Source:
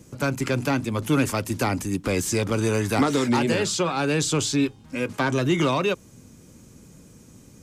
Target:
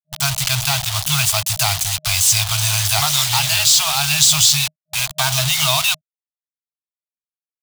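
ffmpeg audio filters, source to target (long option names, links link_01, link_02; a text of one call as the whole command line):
ffmpeg -i in.wav -af "acrusher=bits=4:mix=0:aa=0.000001,afftfilt=real='re*(1-between(b*sr/4096,160,620))':imag='im*(1-between(b*sr/4096,160,620))':win_size=4096:overlap=0.75,highshelf=frequency=2500:width_type=q:width=1.5:gain=9,volume=4.5dB" out.wav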